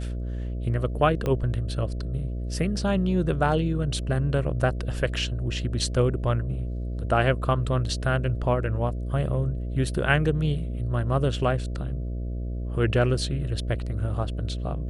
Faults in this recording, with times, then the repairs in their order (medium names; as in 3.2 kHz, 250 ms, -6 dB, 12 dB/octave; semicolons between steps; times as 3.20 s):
buzz 60 Hz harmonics 11 -30 dBFS
1.26 s: pop -15 dBFS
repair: de-click; de-hum 60 Hz, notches 11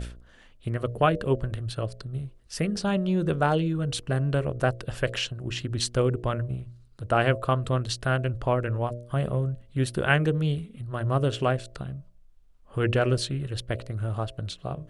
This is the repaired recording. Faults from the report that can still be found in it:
1.26 s: pop